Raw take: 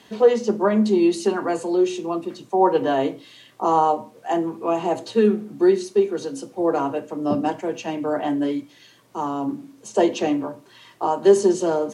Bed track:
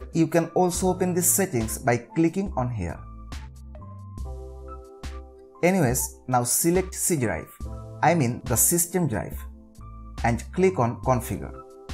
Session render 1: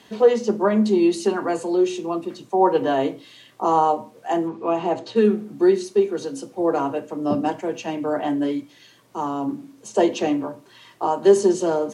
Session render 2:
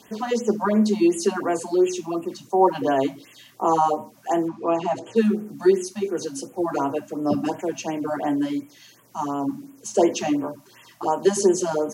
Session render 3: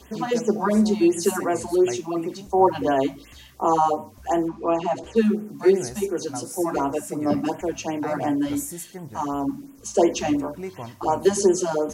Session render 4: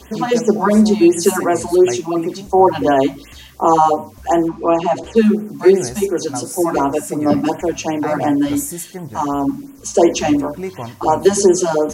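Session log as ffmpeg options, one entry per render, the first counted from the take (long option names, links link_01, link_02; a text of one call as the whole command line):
ffmpeg -i in.wav -filter_complex "[0:a]asettb=1/sr,asplit=3[link_01][link_02][link_03];[link_01]atrim=end=4.484[link_04];[link_02]atrim=start=4.48:end=5.16,asetpts=PTS-STARTPTS,afade=type=in:duration=0.004:curve=qsin,afade=type=out:start_time=0.676:duration=0.004:curve=qsin,lowpass=5000[link_05];[link_03]atrim=start=5.156[link_06];[link_04][link_05]acrossfade=duration=0.004:curve1=hsin:curve2=qsin[link_07];[link_07][link_06]acrossfade=duration=0.004:curve1=qsin:curve2=hsin" out.wav
ffmpeg -i in.wav -af "aexciter=amount=2.1:drive=4.4:freq=5100,afftfilt=real='re*(1-between(b*sr/1024,380*pow(4900/380,0.5+0.5*sin(2*PI*2.8*pts/sr))/1.41,380*pow(4900/380,0.5+0.5*sin(2*PI*2.8*pts/sr))*1.41))':imag='im*(1-between(b*sr/1024,380*pow(4900/380,0.5+0.5*sin(2*PI*2.8*pts/sr))/1.41,380*pow(4900/380,0.5+0.5*sin(2*PI*2.8*pts/sr))*1.41))':win_size=1024:overlap=0.75" out.wav
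ffmpeg -i in.wav -i bed.wav -filter_complex "[1:a]volume=-13.5dB[link_01];[0:a][link_01]amix=inputs=2:normalize=0" out.wav
ffmpeg -i in.wav -af "volume=7.5dB,alimiter=limit=-1dB:level=0:latency=1" out.wav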